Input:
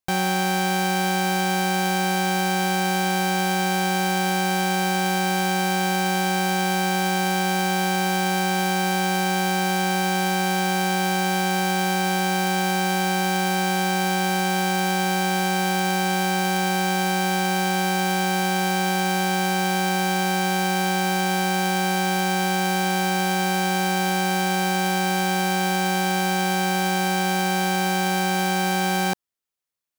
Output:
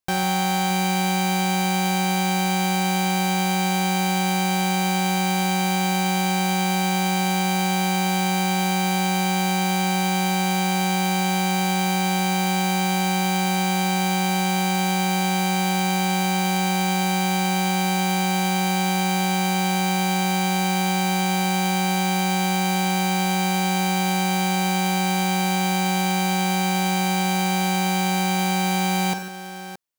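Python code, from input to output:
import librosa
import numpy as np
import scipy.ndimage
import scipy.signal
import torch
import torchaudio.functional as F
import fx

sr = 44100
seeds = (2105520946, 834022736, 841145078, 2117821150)

y = fx.echo_multitap(x, sr, ms=(40, 50, 91, 147, 622), db=(-19.0, -12.5, -14.5, -13.5, -13.0))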